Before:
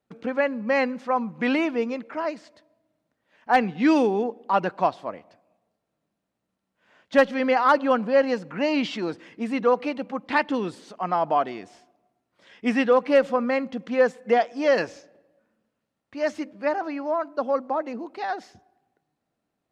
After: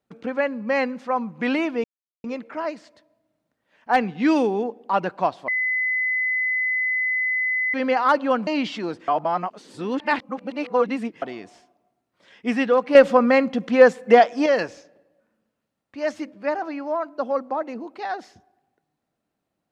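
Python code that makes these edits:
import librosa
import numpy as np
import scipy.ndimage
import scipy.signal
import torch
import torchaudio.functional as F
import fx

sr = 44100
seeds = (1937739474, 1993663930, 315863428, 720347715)

y = fx.edit(x, sr, fx.insert_silence(at_s=1.84, length_s=0.4),
    fx.bleep(start_s=5.08, length_s=2.26, hz=2020.0, db=-20.0),
    fx.cut(start_s=8.07, length_s=0.59),
    fx.reverse_span(start_s=9.27, length_s=2.14),
    fx.clip_gain(start_s=13.14, length_s=1.51, db=7.0), tone=tone)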